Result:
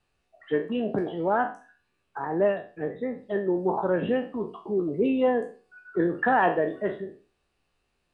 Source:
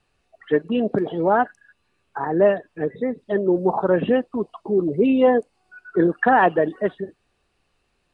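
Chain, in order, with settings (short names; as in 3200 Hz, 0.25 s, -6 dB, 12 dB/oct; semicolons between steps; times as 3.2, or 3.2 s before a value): spectral trails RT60 0.37 s; gain -7 dB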